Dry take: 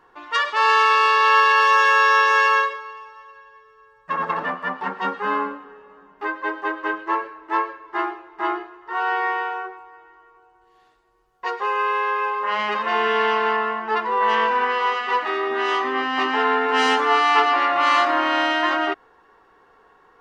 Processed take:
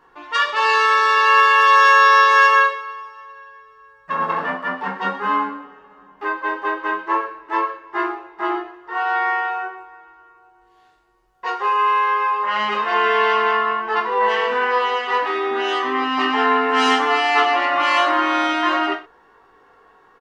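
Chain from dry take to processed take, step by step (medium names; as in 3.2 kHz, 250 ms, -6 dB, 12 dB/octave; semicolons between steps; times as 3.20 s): reverse bouncing-ball echo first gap 20 ms, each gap 1.1×, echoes 5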